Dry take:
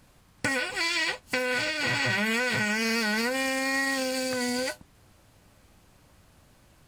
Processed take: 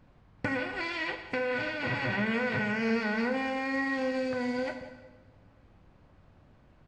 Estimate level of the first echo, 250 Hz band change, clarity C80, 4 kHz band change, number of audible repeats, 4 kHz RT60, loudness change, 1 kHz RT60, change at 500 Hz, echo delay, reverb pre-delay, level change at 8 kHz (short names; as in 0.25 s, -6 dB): -18.0 dB, 0.0 dB, 9.5 dB, -11.5 dB, 1, 1.0 s, -4.0 dB, 1.1 s, -0.5 dB, 0.179 s, 19 ms, under -20 dB